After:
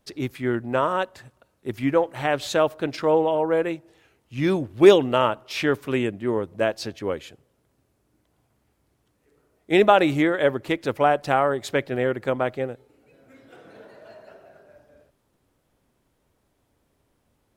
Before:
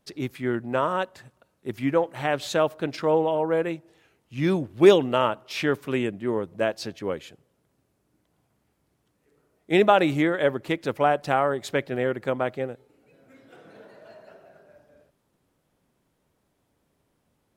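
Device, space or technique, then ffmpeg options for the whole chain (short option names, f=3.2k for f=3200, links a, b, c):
low shelf boost with a cut just above: -af "lowshelf=f=80:g=6.5,equalizer=f=170:t=o:w=0.51:g=-5,volume=2dB"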